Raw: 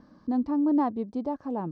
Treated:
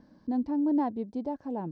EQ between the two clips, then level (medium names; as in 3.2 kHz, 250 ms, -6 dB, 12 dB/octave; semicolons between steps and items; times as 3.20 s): peaking EQ 1.2 kHz -14.5 dB 0.21 oct; -2.5 dB